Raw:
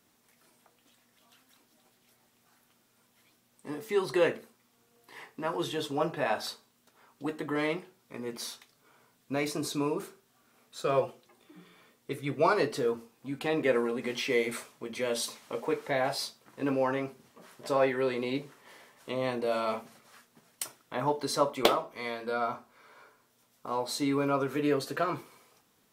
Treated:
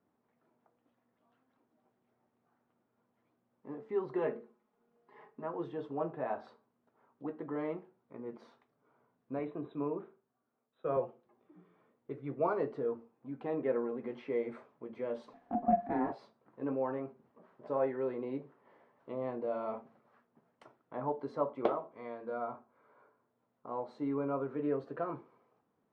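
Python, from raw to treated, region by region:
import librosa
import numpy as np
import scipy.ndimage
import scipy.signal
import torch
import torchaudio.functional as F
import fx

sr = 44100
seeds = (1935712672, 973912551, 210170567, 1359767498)

y = fx.chain(x, sr, fx.hum_notches(base_hz=60, count=8),
    fx.comb(ms=4.8, depth=0.68), at=(4.18, 5.44))
y = fx.chain(y, sr, fx.brickwall_lowpass(high_hz=4000.0),
    fx.band_widen(depth_pct=40), at=(9.39, 10.97))
y = fx.chain(y, sr, fx.ring_mod(carrier_hz=250.0),
    fx.small_body(hz=(250.0, 700.0, 1700.0), ring_ms=85, db=18), at=(15.33, 16.12))
y = scipy.signal.sosfilt(scipy.signal.butter(2, 1000.0, 'lowpass', fs=sr, output='sos'), y)
y = fx.low_shelf(y, sr, hz=71.0, db=-11.5)
y = F.gain(torch.from_numpy(y), -5.0).numpy()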